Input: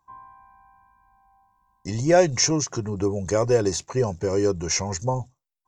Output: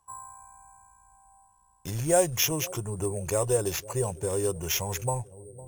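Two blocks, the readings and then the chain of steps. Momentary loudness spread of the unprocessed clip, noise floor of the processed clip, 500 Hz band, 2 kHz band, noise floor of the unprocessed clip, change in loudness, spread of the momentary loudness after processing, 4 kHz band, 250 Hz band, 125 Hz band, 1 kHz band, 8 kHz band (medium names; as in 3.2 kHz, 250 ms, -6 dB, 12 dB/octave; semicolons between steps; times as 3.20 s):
10 LU, -64 dBFS, -6.0 dB, -5.0 dB, -78 dBFS, -4.5 dB, 20 LU, -4.0 dB, -9.0 dB, -4.5 dB, -4.5 dB, -2.5 dB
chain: bucket-brigade echo 506 ms, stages 2048, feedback 52%, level -20.5 dB; in parallel at +2 dB: compression, threshold -36 dBFS, peak gain reduction 22.5 dB; on the sum: sample-and-hold 5×; ten-band graphic EQ 250 Hz -10 dB, 2 kHz -7 dB, 4 kHz -6 dB, 8 kHz +11 dB; trim -4.5 dB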